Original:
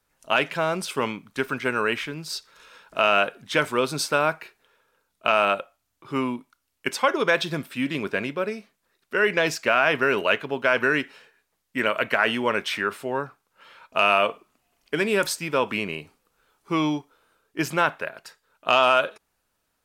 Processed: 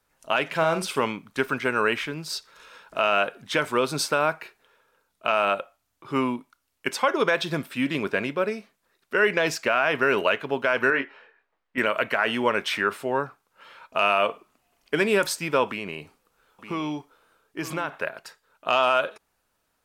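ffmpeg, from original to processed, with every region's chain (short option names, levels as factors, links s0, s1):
-filter_complex "[0:a]asettb=1/sr,asplit=3[s0][s1][s2];[s0]atrim=end=0.474[s3];[s1]atrim=start=0.47:end=1.02,asetpts=PTS-STARTPTS,afade=t=in:d=0.004:c=qsin,afade=t=out:st=0.546:d=0.004:c=qsin,acompressor=mode=upward:threshold=0.0112:ratio=2.5:attack=3.2:release=140:knee=2.83:detection=peak,asplit=2[s4][s5];[s5]adelay=49,volume=0.335[s6];[s4][s6]amix=inputs=2:normalize=0,atrim=end_sample=24255[s7];[s2]atrim=start=1.016[s8];[s3][s7]acrossfade=d=0.004:c1=hsin:c2=qsin[s9];[s9][s8]acrossfade=d=0.004:c1=qsin:c2=hsin,asettb=1/sr,asplit=3[s10][s11][s12];[s10]atrim=end=10.904[s13];[s11]atrim=start=10.9:end=11.78,asetpts=PTS-STARTPTS,afade=t=in:d=0.004:c=qsin,afade=t=out:st=0.876:d=0.004:c=qsin,lowpass=2200,equalizer=f=110:t=o:w=2.3:g=-12,asplit=2[s14][s15];[s15]adelay=22,volume=0.501[s16];[s14][s16]amix=inputs=2:normalize=0,atrim=end_sample=38808[s17];[s12]atrim=start=11.776[s18];[s13][s17]acrossfade=d=0.004:c1=hsin:c2=qsin[s19];[s19][s18]acrossfade=d=0.004:c1=qsin:c2=hsin,asettb=1/sr,asplit=3[s20][s21][s22];[s20]atrim=end=15.674[s23];[s21]atrim=start=15.67:end=17.94,asetpts=PTS-STARTPTS,afade=t=in:d=0.004:c=qsin,afade=t=out:st=2.266:d=0.004:c=qsin,acompressor=threshold=0.0316:ratio=2.5:attack=3.2:release=140:knee=1:detection=peak,aecho=1:1:915:0.251,atrim=end_sample=100107[s24];[s22]atrim=start=17.936[s25];[s23][s24]acrossfade=d=0.004:c1=hsin:c2=qsin[s26];[s26][s25]acrossfade=d=0.004:c1=qsin:c2=hsin,equalizer=f=830:w=0.52:g=2.5,alimiter=limit=0.335:level=0:latency=1:release=175"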